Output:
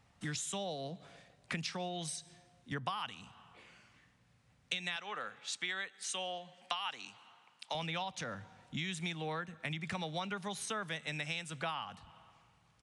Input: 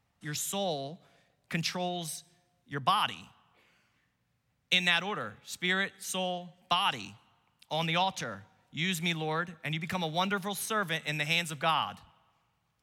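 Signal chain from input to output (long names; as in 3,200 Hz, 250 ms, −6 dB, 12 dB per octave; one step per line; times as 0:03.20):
0:04.96–0:07.75: meter weighting curve A
downward compressor 5 to 1, threshold −45 dBFS, peak gain reduction 21.5 dB
downsampling to 22,050 Hz
level +7 dB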